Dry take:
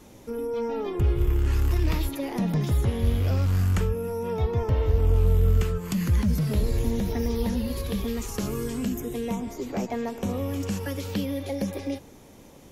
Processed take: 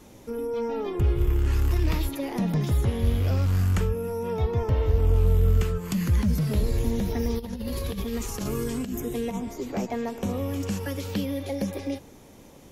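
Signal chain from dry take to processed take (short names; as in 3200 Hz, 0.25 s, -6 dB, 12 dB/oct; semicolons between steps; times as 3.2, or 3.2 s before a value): 7.38–9.39 negative-ratio compressor -29 dBFS, ratio -0.5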